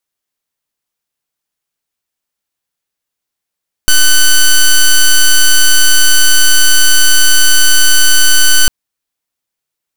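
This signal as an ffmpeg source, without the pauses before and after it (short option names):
-f lavfi -i "aevalsrc='0.562*(2*lt(mod(1510*t,1),0.08)-1)':d=4.8:s=44100"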